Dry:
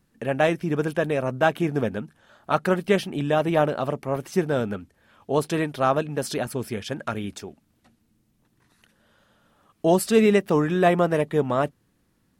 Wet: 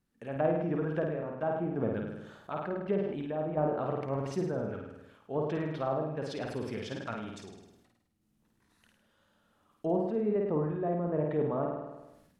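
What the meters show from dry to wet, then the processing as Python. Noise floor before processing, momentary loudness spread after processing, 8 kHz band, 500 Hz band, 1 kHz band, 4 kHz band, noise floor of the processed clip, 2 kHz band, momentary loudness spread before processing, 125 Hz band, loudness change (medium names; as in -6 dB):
-68 dBFS, 11 LU, -20.5 dB, -9.0 dB, -11.0 dB, -15.5 dB, -73 dBFS, -15.5 dB, 11 LU, -7.5 dB, -9.5 dB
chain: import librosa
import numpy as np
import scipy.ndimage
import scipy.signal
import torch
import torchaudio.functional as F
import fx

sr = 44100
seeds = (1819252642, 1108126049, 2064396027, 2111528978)

p1 = fx.env_lowpass_down(x, sr, base_hz=800.0, full_db=-18.0)
p2 = fx.tremolo_random(p1, sr, seeds[0], hz=2.8, depth_pct=55)
p3 = p2 + fx.room_flutter(p2, sr, wall_m=8.9, rt60_s=0.75, dry=0)
p4 = fx.sustainer(p3, sr, db_per_s=53.0)
y = F.gain(torch.from_numpy(p4), -8.0).numpy()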